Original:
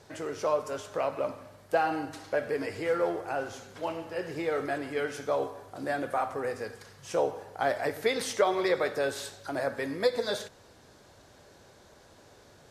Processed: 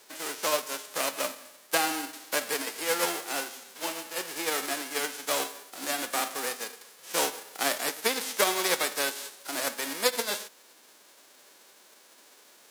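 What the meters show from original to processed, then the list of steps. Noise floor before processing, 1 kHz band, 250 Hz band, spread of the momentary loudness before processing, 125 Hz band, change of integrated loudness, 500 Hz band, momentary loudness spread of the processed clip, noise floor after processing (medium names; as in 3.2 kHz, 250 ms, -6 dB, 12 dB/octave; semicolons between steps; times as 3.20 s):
-57 dBFS, 0.0 dB, -3.0 dB, 9 LU, -10.5 dB, +1.5 dB, -4.5 dB, 9 LU, -57 dBFS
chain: formants flattened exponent 0.3; high-pass 240 Hz 24 dB/octave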